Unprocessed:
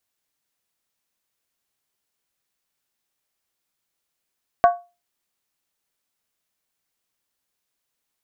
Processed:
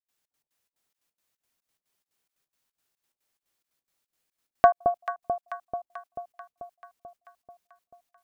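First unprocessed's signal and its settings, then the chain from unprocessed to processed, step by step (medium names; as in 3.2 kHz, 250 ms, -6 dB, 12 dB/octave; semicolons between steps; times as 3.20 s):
skin hit, lowest mode 701 Hz, decay 0.28 s, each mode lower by 8 dB, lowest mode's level -7 dB
trance gate ".xx.x.xx" 178 bpm -60 dB; echo whose repeats swap between lows and highs 219 ms, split 890 Hz, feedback 77%, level -6 dB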